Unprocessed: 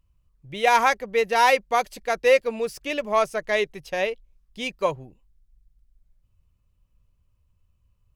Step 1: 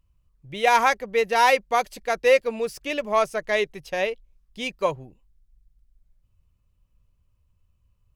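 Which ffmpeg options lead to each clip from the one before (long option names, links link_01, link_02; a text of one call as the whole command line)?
ffmpeg -i in.wav -af anull out.wav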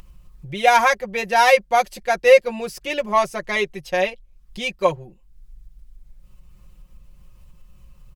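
ffmpeg -i in.wav -af "aecho=1:1:5.6:0.94,acompressor=mode=upward:threshold=-31dB:ratio=2.5,volume=1dB" out.wav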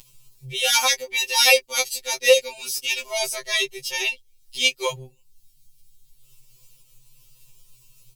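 ffmpeg -i in.wav -af "aexciter=amount=6.9:drive=5.7:freq=2500,afftfilt=real='re*2.45*eq(mod(b,6),0)':imag='im*2.45*eq(mod(b,6),0)':win_size=2048:overlap=0.75,volume=-5.5dB" out.wav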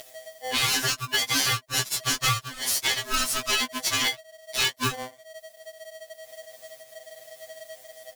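ffmpeg -i in.wav -af "acompressor=threshold=-26dB:ratio=16,aeval=exprs='val(0)*sgn(sin(2*PI*640*n/s))':channel_layout=same,volume=5dB" out.wav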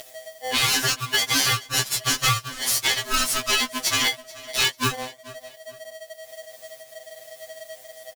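ffmpeg -i in.wav -af "aecho=1:1:434|868:0.0944|0.0302,volume=3dB" out.wav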